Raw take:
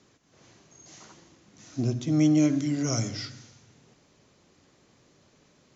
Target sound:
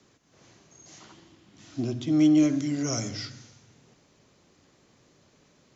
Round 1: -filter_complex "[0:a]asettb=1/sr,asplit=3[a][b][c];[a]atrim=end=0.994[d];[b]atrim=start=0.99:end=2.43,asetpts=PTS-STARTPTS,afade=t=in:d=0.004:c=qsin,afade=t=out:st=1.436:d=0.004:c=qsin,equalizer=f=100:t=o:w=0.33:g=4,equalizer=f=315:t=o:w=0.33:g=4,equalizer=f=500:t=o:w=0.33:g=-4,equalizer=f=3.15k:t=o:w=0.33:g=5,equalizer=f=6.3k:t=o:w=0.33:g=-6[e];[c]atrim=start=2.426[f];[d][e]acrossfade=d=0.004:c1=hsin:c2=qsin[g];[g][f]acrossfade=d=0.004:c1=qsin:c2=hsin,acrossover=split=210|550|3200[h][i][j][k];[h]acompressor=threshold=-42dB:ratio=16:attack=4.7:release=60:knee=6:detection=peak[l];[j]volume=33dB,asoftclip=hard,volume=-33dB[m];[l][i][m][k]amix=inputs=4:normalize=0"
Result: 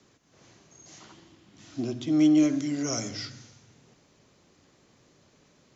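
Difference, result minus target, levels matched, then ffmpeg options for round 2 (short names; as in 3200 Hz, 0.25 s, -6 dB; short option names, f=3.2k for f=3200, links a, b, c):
compressor: peak gain reduction +8 dB
-filter_complex "[0:a]asettb=1/sr,asplit=3[a][b][c];[a]atrim=end=0.994[d];[b]atrim=start=0.99:end=2.43,asetpts=PTS-STARTPTS,afade=t=in:d=0.004:c=qsin,afade=t=out:st=1.436:d=0.004:c=qsin,equalizer=f=100:t=o:w=0.33:g=4,equalizer=f=315:t=o:w=0.33:g=4,equalizer=f=500:t=o:w=0.33:g=-4,equalizer=f=3.15k:t=o:w=0.33:g=5,equalizer=f=6.3k:t=o:w=0.33:g=-6[e];[c]atrim=start=2.426[f];[d][e]acrossfade=d=0.004:c1=hsin:c2=qsin[g];[g][f]acrossfade=d=0.004:c1=qsin:c2=hsin,acrossover=split=210|550|3200[h][i][j][k];[h]acompressor=threshold=-33.5dB:ratio=16:attack=4.7:release=60:knee=6:detection=peak[l];[j]volume=33dB,asoftclip=hard,volume=-33dB[m];[l][i][m][k]amix=inputs=4:normalize=0"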